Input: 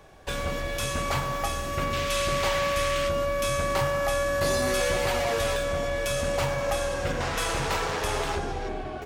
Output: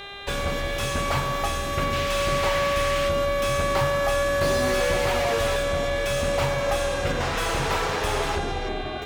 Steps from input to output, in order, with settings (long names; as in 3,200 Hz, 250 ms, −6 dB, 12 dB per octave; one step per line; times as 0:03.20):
hum with harmonics 400 Hz, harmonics 10, −42 dBFS 0 dB per octave
slew-rate limiting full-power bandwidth 110 Hz
level +3 dB